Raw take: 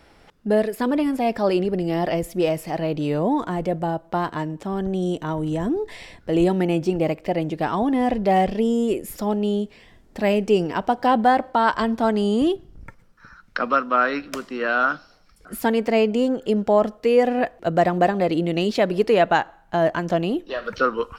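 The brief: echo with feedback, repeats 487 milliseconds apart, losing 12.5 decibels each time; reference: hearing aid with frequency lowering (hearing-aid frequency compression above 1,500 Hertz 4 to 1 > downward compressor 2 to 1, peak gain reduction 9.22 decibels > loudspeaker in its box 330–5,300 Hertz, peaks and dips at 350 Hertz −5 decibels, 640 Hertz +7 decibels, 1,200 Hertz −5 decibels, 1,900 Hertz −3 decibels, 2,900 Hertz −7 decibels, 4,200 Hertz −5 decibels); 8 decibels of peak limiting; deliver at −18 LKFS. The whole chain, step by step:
brickwall limiter −14.5 dBFS
repeating echo 487 ms, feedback 24%, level −12.5 dB
hearing-aid frequency compression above 1,500 Hz 4 to 1
downward compressor 2 to 1, threshold −34 dBFS
loudspeaker in its box 330–5,300 Hz, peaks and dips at 350 Hz −5 dB, 640 Hz +7 dB, 1,200 Hz −5 dB, 1,900 Hz −3 dB, 2,900 Hz −7 dB, 4,200 Hz −5 dB
level +15 dB

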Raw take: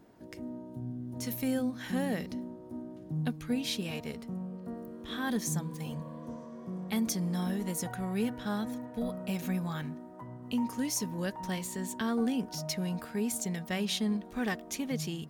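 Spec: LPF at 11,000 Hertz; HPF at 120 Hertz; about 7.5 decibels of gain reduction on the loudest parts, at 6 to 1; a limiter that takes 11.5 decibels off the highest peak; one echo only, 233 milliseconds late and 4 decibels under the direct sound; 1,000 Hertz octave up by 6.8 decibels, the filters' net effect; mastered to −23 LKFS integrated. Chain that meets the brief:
high-pass filter 120 Hz
low-pass filter 11,000 Hz
parametric band 1,000 Hz +8.5 dB
downward compressor 6 to 1, threshold −34 dBFS
brickwall limiter −33.5 dBFS
single-tap delay 233 ms −4 dB
level +17.5 dB

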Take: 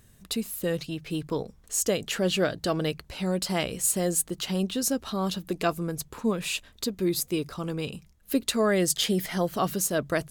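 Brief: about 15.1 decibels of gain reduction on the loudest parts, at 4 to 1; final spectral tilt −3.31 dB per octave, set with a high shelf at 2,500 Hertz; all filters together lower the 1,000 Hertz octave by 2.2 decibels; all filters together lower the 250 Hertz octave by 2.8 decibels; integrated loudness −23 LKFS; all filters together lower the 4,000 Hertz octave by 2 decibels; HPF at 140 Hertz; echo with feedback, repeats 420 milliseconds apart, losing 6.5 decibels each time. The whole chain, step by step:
high-pass filter 140 Hz
parametric band 250 Hz −3 dB
parametric band 1,000 Hz −3.5 dB
high-shelf EQ 2,500 Hz +5 dB
parametric band 4,000 Hz −7 dB
downward compressor 4 to 1, threshold −36 dBFS
repeating echo 420 ms, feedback 47%, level −6.5 dB
level +14 dB

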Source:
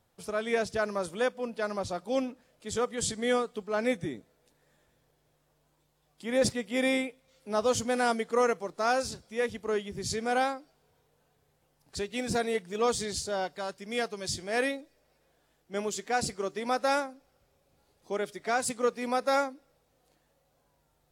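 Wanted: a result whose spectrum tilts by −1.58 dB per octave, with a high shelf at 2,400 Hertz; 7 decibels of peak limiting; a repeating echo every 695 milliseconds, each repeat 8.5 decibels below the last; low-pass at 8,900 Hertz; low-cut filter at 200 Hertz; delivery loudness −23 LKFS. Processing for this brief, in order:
high-pass filter 200 Hz
low-pass filter 8,900 Hz
high-shelf EQ 2,400 Hz +7.5 dB
brickwall limiter −17 dBFS
repeating echo 695 ms, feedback 38%, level −8.5 dB
level +7.5 dB

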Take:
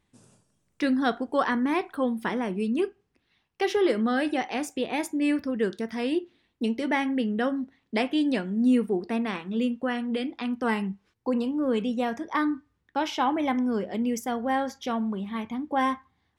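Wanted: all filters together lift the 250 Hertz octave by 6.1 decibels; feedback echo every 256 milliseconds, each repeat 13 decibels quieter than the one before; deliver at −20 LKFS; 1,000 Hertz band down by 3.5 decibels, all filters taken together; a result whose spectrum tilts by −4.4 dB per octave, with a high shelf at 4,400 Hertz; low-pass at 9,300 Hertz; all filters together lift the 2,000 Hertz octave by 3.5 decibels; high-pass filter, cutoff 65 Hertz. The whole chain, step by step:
high-pass filter 65 Hz
low-pass filter 9,300 Hz
parametric band 250 Hz +7 dB
parametric band 1,000 Hz −6.5 dB
parametric band 2,000 Hz +5 dB
high-shelf EQ 4,400 Hz +5.5 dB
repeating echo 256 ms, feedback 22%, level −13 dB
level +3 dB

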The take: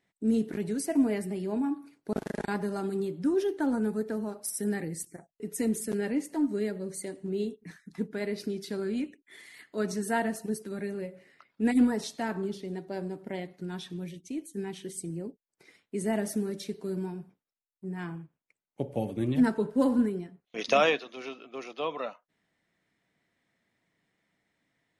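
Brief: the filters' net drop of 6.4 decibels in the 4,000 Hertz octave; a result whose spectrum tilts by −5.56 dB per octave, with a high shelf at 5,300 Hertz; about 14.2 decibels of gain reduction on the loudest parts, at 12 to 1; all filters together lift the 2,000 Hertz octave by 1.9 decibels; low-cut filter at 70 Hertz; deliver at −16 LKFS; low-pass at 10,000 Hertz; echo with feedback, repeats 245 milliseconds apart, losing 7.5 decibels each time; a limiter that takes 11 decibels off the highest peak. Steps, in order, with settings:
high-pass filter 70 Hz
low-pass filter 10,000 Hz
parametric band 2,000 Hz +5.5 dB
parametric band 4,000 Hz −8 dB
high-shelf EQ 5,300 Hz −7.5 dB
downward compressor 12 to 1, threshold −33 dBFS
brickwall limiter −30 dBFS
repeating echo 245 ms, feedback 42%, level −7.5 dB
level +23.5 dB

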